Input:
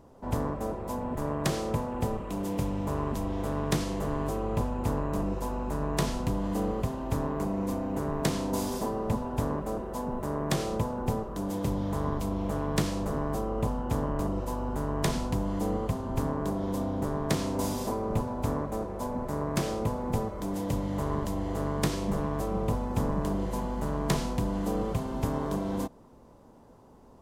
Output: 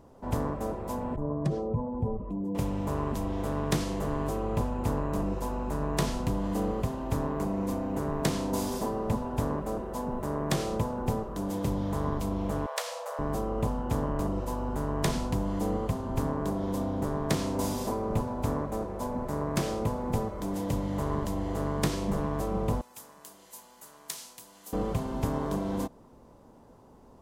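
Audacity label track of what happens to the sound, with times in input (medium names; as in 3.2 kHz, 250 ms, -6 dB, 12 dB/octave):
1.160000	2.550000	spectral contrast enhancement exponent 1.9
12.660000	13.190000	brick-wall FIR high-pass 460 Hz
22.810000	24.730000	differentiator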